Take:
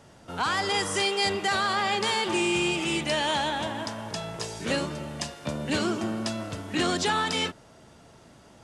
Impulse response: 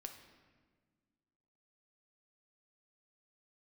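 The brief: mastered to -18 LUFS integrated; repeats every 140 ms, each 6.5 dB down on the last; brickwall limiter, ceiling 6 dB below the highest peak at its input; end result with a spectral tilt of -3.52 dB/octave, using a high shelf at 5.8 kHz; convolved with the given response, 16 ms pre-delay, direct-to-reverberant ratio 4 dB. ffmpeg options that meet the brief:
-filter_complex "[0:a]highshelf=f=5800:g=-6.5,alimiter=limit=0.0944:level=0:latency=1,aecho=1:1:140|280|420|560|700|840:0.473|0.222|0.105|0.0491|0.0231|0.0109,asplit=2[s0][s1];[1:a]atrim=start_sample=2205,adelay=16[s2];[s1][s2]afir=irnorm=-1:irlink=0,volume=1.06[s3];[s0][s3]amix=inputs=2:normalize=0,volume=3.16"

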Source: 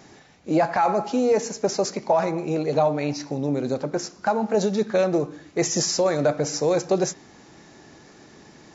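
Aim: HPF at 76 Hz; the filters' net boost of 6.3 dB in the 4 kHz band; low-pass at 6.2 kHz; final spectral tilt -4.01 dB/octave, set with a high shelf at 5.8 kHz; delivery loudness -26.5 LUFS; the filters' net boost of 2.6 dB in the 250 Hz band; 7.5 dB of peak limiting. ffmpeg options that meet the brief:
-af "highpass=76,lowpass=6200,equalizer=f=250:t=o:g=3.5,equalizer=f=4000:t=o:g=6,highshelf=f=5800:g=8.5,volume=0.794,alimiter=limit=0.141:level=0:latency=1"

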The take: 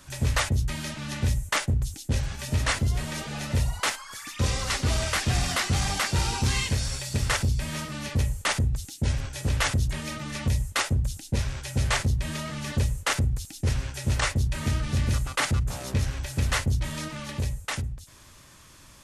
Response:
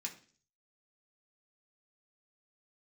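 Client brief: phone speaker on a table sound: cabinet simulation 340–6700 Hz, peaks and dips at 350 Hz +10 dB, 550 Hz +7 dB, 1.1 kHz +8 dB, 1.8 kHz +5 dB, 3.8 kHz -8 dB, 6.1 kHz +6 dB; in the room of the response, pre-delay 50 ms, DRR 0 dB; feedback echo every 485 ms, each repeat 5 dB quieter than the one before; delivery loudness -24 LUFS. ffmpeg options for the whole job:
-filter_complex "[0:a]aecho=1:1:485|970|1455|1940|2425|2910|3395:0.562|0.315|0.176|0.0988|0.0553|0.031|0.0173,asplit=2[s0][s1];[1:a]atrim=start_sample=2205,adelay=50[s2];[s1][s2]afir=irnorm=-1:irlink=0,volume=1.19[s3];[s0][s3]amix=inputs=2:normalize=0,highpass=f=340:w=0.5412,highpass=f=340:w=1.3066,equalizer=f=350:t=q:w=4:g=10,equalizer=f=550:t=q:w=4:g=7,equalizer=f=1100:t=q:w=4:g=8,equalizer=f=1800:t=q:w=4:g=5,equalizer=f=3800:t=q:w=4:g=-8,equalizer=f=6100:t=q:w=4:g=6,lowpass=f=6700:w=0.5412,lowpass=f=6700:w=1.3066,volume=1.06"

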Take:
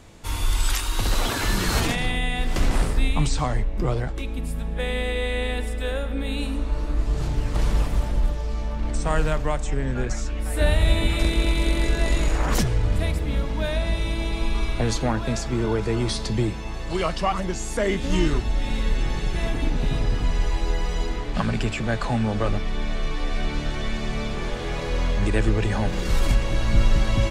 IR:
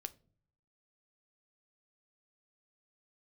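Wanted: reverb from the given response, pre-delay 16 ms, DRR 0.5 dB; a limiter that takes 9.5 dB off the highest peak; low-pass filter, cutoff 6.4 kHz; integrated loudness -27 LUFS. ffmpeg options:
-filter_complex "[0:a]lowpass=6400,alimiter=limit=0.15:level=0:latency=1,asplit=2[s0][s1];[1:a]atrim=start_sample=2205,adelay=16[s2];[s1][s2]afir=irnorm=-1:irlink=0,volume=1.41[s3];[s0][s3]amix=inputs=2:normalize=0,volume=0.841"

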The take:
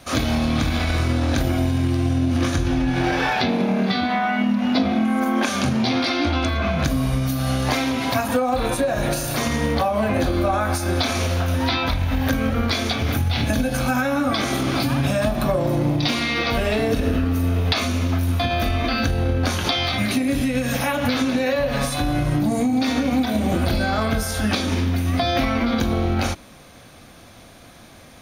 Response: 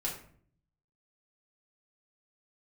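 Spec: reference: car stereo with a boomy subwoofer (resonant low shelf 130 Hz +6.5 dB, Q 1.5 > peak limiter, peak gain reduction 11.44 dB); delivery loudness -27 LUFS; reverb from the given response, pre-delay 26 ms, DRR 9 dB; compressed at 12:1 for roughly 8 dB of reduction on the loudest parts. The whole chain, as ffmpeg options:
-filter_complex "[0:a]acompressor=threshold=0.0631:ratio=12,asplit=2[s0][s1];[1:a]atrim=start_sample=2205,adelay=26[s2];[s1][s2]afir=irnorm=-1:irlink=0,volume=0.251[s3];[s0][s3]amix=inputs=2:normalize=0,lowshelf=f=130:t=q:w=1.5:g=6.5,volume=1.58,alimiter=limit=0.112:level=0:latency=1"

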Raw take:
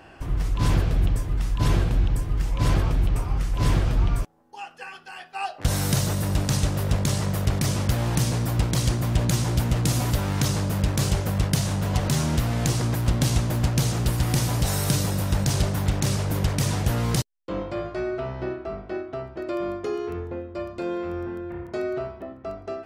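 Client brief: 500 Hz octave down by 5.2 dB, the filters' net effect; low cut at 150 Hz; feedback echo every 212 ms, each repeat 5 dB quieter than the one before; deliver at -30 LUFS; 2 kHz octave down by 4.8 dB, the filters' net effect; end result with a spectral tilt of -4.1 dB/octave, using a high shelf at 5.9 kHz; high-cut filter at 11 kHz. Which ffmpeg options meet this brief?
-af "highpass=150,lowpass=11000,equalizer=f=500:t=o:g=-7,equalizer=f=2000:t=o:g=-7,highshelf=f=5900:g=8.5,aecho=1:1:212|424|636|848|1060|1272|1484:0.562|0.315|0.176|0.0988|0.0553|0.031|0.0173,volume=0.708"

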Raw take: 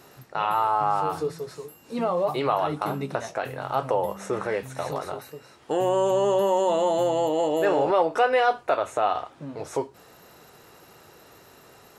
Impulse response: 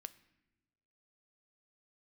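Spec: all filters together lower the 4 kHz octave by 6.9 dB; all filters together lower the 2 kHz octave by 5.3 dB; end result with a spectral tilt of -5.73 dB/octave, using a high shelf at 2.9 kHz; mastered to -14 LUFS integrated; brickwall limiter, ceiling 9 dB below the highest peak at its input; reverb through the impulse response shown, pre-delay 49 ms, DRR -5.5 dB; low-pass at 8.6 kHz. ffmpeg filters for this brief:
-filter_complex "[0:a]lowpass=8600,equalizer=f=2000:t=o:g=-5.5,highshelf=f=2900:g=-5,equalizer=f=4000:t=o:g=-3,alimiter=limit=0.0944:level=0:latency=1,asplit=2[s0][s1];[1:a]atrim=start_sample=2205,adelay=49[s2];[s1][s2]afir=irnorm=-1:irlink=0,volume=3.55[s3];[s0][s3]amix=inputs=2:normalize=0,volume=3.16"

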